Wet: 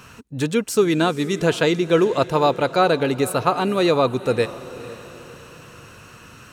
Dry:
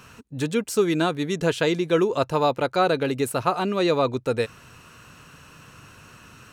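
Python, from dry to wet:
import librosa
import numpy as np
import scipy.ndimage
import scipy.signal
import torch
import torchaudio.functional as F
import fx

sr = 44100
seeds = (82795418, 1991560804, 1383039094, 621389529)

y = fx.echo_diffused(x, sr, ms=486, feedback_pct=42, wet_db=-16)
y = y * librosa.db_to_amplitude(3.5)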